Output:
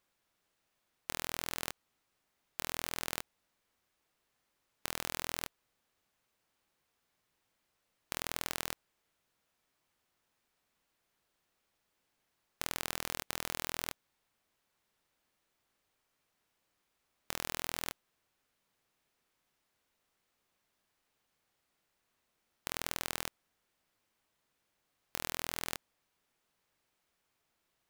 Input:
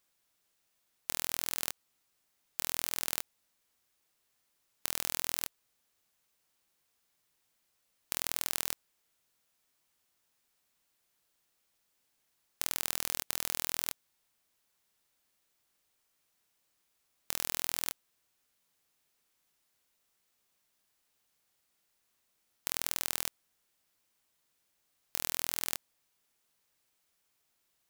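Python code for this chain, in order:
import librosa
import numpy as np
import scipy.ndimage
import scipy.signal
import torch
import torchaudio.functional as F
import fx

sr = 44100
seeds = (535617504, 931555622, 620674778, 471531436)

y = fx.high_shelf(x, sr, hz=3900.0, db=-11.0)
y = y * 10.0 ** (3.0 / 20.0)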